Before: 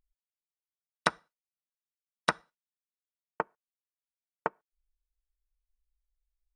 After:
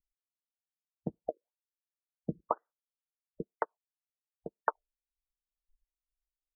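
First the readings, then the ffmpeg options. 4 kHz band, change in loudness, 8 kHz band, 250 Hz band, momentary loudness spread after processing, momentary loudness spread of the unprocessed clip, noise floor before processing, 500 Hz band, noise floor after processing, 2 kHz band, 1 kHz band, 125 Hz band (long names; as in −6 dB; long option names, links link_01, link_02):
below −40 dB, −4.5 dB, below −30 dB, +2.5 dB, 12 LU, 6 LU, below −85 dBFS, 0.0 dB, below −85 dBFS, −11.0 dB, −2.0 dB, +4.0 dB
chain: -filter_complex "[0:a]acrossover=split=550[link_01][link_02];[link_01]aeval=exprs='val(0)*(1-0.7/2+0.7/2*cos(2*PI*2.1*n/s))':channel_layout=same[link_03];[link_02]aeval=exprs='val(0)*(1-0.7/2-0.7/2*cos(2*PI*2.1*n/s))':channel_layout=same[link_04];[link_03][link_04]amix=inputs=2:normalize=0,equalizer=frequency=3700:width=0.82:gain=-11,acrossover=split=420[link_05][link_06];[link_06]adelay=220[link_07];[link_05][link_07]amix=inputs=2:normalize=0,asplit=2[link_08][link_09];[link_09]asoftclip=type=hard:threshold=-23dB,volume=-5dB[link_10];[link_08][link_10]amix=inputs=2:normalize=0,afwtdn=0.00316,afftfilt=real='re*lt(b*sr/1024,540*pow(2100/540,0.5+0.5*sin(2*PI*2*pts/sr)))':imag='im*lt(b*sr/1024,540*pow(2100/540,0.5+0.5*sin(2*PI*2*pts/sr)))':win_size=1024:overlap=0.75,volume=3dB"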